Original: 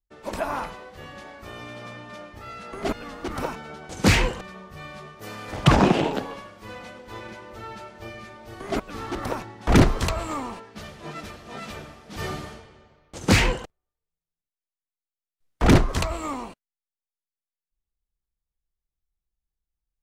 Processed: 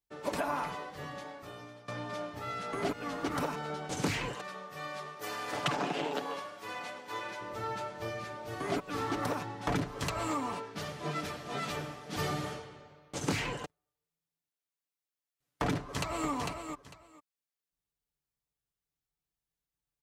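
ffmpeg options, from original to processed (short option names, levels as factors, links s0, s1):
-filter_complex "[0:a]asettb=1/sr,asplit=3[s0][s1][s2];[s0]atrim=end=4.344[s3];[s1]atrim=start=4.34:end=7.41,asetpts=PTS-STARTPTS,afade=t=in:d=0.004:c=qsin,afade=t=out:st=3.066:d=0.004:c=qsin,highpass=f=500:p=1[s4];[s2]atrim=start=7.406[s5];[s3][s4]acrossfade=d=0.004:c1=hsin:c2=qsin[s6];[s6][s5]acrossfade=d=0.004:c1=qsin:c2=hsin,asplit=2[s7][s8];[s8]afade=t=in:st=15.78:d=0.01,afade=t=out:st=16.29:d=0.01,aecho=0:1:450|900:0.316228|0.0474342[s9];[s7][s9]amix=inputs=2:normalize=0,asplit=2[s10][s11];[s10]atrim=end=1.88,asetpts=PTS-STARTPTS,afade=t=out:st=0.84:d=1.04:silence=0.0944061[s12];[s11]atrim=start=1.88,asetpts=PTS-STARTPTS,afade=t=in:d=0.004:c=hsin:silence=0.0944061[s13];[s12][s13]concat=n=2:v=0:a=1,highpass=86,aecho=1:1:6.9:0.56,acompressor=threshold=0.0355:ratio=12"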